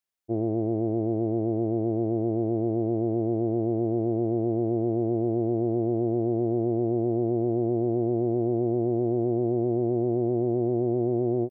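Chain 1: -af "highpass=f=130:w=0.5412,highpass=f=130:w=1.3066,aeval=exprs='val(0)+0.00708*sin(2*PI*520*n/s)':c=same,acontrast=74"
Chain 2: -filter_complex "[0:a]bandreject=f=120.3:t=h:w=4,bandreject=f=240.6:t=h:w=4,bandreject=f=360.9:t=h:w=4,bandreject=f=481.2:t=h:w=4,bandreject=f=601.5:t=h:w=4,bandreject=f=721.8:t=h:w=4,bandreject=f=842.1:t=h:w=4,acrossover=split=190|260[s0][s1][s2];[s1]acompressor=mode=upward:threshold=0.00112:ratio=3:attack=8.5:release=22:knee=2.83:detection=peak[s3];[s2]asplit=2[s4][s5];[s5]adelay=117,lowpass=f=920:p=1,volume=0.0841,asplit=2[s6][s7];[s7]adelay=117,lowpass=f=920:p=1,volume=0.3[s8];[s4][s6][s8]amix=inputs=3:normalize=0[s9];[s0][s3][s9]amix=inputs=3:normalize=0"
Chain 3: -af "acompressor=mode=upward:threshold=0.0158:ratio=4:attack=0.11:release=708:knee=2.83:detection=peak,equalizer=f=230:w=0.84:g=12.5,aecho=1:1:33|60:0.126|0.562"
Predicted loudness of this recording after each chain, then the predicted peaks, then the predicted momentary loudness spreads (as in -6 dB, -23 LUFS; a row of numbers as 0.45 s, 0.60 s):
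-20.0 LUFS, -27.0 LUFS, -16.5 LUFS; -10.0 dBFS, -16.0 dBFS, -5.0 dBFS; 1 LU, 1 LU, 2 LU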